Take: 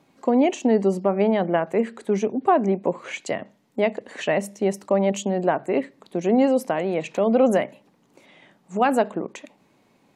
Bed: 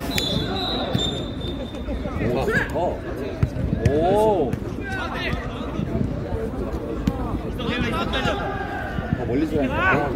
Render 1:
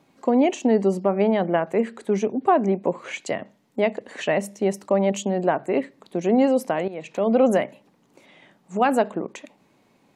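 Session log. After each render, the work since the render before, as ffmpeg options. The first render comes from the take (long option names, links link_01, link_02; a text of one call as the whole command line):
ffmpeg -i in.wav -filter_complex "[0:a]asplit=2[link_01][link_02];[link_01]atrim=end=6.88,asetpts=PTS-STARTPTS,afade=type=out:start_time=6.876:duration=0.004:curve=hsin:silence=0.199526[link_03];[link_02]atrim=start=6.88,asetpts=PTS-STARTPTS,afade=type=in:duration=0.44:silence=0.199526[link_04];[link_03][link_04]concat=n=2:v=0:a=1" out.wav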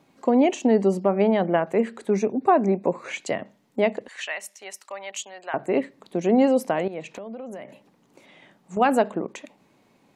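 ffmpeg -i in.wav -filter_complex "[0:a]asettb=1/sr,asplit=3[link_01][link_02][link_03];[link_01]atrim=end=2.104[link_04];[link_02]atrim=start=2.1:end=3.1,asetpts=PTS-STARTPTS,afade=type=in:duration=0.004:curve=qsin,afade=type=out:start_time=0.996:duration=0.004:curve=qsin,asuperstop=centerf=3100:order=12:qfactor=5[link_05];[link_03]atrim=start=3.096[link_06];[link_04][link_05]acrossfade=duration=0.004:curve1=hsin:curve2=qsin[link_07];[link_07][link_06]acrossfade=duration=0.004:curve1=qsin:curve2=hsin,asettb=1/sr,asplit=3[link_08][link_09][link_10];[link_08]atrim=end=4.084[link_11];[link_09]atrim=start=4.08:end=5.54,asetpts=PTS-STARTPTS,afade=type=in:duration=0.004:curve=qsin,afade=type=out:start_time=1.456:duration=0.004:curve=qsin,highpass=1500[link_12];[link_10]atrim=start=5.536[link_13];[link_11][link_12]acrossfade=duration=0.004:curve1=hsin:curve2=qsin[link_14];[link_14][link_13]acrossfade=duration=0.004:curve1=qsin:curve2=hsin,asettb=1/sr,asplit=3[link_15][link_16][link_17];[link_15]atrim=end=7.074[link_18];[link_16]atrim=start=7.07:end=8.77,asetpts=PTS-STARTPTS,afade=type=in:duration=0.004:curve=qsin,afade=type=out:start_time=1.696:duration=0.004:curve=qsin,acompressor=threshold=-32dB:ratio=16:attack=3.2:release=140:knee=1:detection=peak[link_19];[link_17]atrim=start=8.766[link_20];[link_18][link_19]acrossfade=duration=0.004:curve1=hsin:curve2=qsin[link_21];[link_21][link_20]acrossfade=duration=0.004:curve1=qsin:curve2=hsin" out.wav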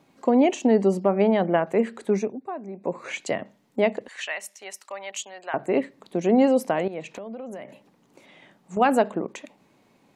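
ffmpeg -i in.wav -filter_complex "[0:a]asplit=3[link_01][link_02][link_03];[link_01]atrim=end=2.43,asetpts=PTS-STARTPTS,afade=type=out:start_time=2.12:duration=0.31:silence=0.16788[link_04];[link_02]atrim=start=2.43:end=2.73,asetpts=PTS-STARTPTS,volume=-15.5dB[link_05];[link_03]atrim=start=2.73,asetpts=PTS-STARTPTS,afade=type=in:duration=0.31:silence=0.16788[link_06];[link_04][link_05][link_06]concat=n=3:v=0:a=1" out.wav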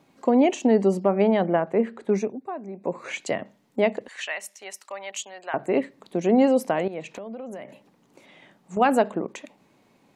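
ffmpeg -i in.wav -filter_complex "[0:a]asettb=1/sr,asplit=3[link_01][link_02][link_03];[link_01]atrim=end=1.534[link_04];[link_02]atrim=start=1.53:end=2.09,asetpts=PTS-STARTPTS,afade=type=in:duration=0.004:curve=qsin,afade=type=out:start_time=0.556:duration=0.004:curve=qsin,lowpass=frequency=1700:poles=1[link_05];[link_03]atrim=start=2.086[link_06];[link_04][link_05]acrossfade=duration=0.004:curve1=hsin:curve2=qsin[link_07];[link_07][link_06]acrossfade=duration=0.004:curve1=qsin:curve2=hsin" out.wav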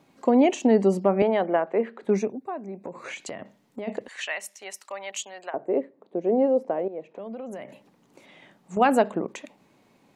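ffmpeg -i in.wav -filter_complex "[0:a]asettb=1/sr,asplit=3[link_01][link_02][link_03];[link_01]atrim=end=1.224[link_04];[link_02]atrim=start=1.22:end=2.03,asetpts=PTS-STARTPTS,afade=type=in:duration=0.004:curve=qsin,afade=type=out:start_time=0.806:duration=0.004:curve=qsin,highpass=320,lowpass=4000[link_05];[link_03]atrim=start=2.026[link_06];[link_04][link_05]acrossfade=duration=0.004:curve1=hsin:curve2=qsin[link_07];[link_07][link_06]acrossfade=duration=0.004:curve1=qsin:curve2=hsin,asplit=3[link_08][link_09][link_10];[link_08]afade=type=out:start_time=2.8:duration=0.02[link_11];[link_09]acompressor=threshold=-32dB:ratio=5:attack=3.2:release=140:knee=1:detection=peak,afade=type=in:start_time=2.8:duration=0.02,afade=type=out:start_time=3.87:duration=0.02[link_12];[link_10]afade=type=in:start_time=3.87:duration=0.02[link_13];[link_11][link_12][link_13]amix=inputs=3:normalize=0,asplit=3[link_14][link_15][link_16];[link_14]afade=type=out:start_time=5.49:duration=0.02[link_17];[link_15]bandpass=frequency=470:width_type=q:width=1.4,afade=type=in:start_time=5.49:duration=0.02,afade=type=out:start_time=7.18:duration=0.02[link_18];[link_16]afade=type=in:start_time=7.18:duration=0.02[link_19];[link_17][link_18][link_19]amix=inputs=3:normalize=0" out.wav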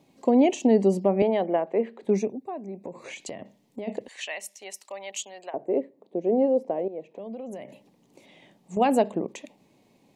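ffmpeg -i in.wav -af "equalizer=frequency=1400:width=2:gain=-13.5" out.wav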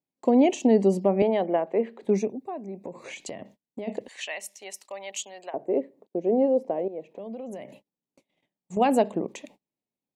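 ffmpeg -i in.wav -af "agate=range=-32dB:threshold=-50dB:ratio=16:detection=peak" out.wav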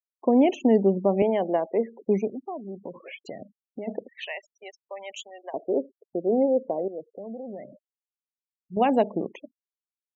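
ffmpeg -i in.wav -af "lowpass=4400,afftfilt=real='re*gte(hypot(re,im),0.0141)':imag='im*gte(hypot(re,im),0.0141)':win_size=1024:overlap=0.75" out.wav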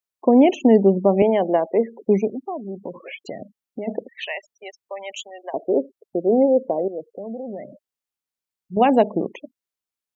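ffmpeg -i in.wav -af "volume=5.5dB" out.wav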